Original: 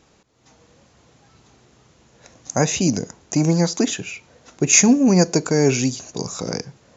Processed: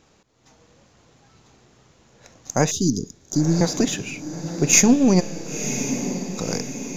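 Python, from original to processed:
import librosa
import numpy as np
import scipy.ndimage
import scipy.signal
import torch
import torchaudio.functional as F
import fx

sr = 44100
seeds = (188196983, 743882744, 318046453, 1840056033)

y = np.where(x < 0.0, 10.0 ** (-3.0 / 20.0) * x, x)
y = fx.cheby1_bandstop(y, sr, low_hz=420.0, high_hz=3300.0, order=5, at=(2.71, 3.61))
y = fx.comb_fb(y, sr, f0_hz=67.0, decay_s=1.9, harmonics='all', damping=0.0, mix_pct=100, at=(5.19, 6.37), fade=0.02)
y = fx.echo_diffused(y, sr, ms=1020, feedback_pct=54, wet_db=-10.0)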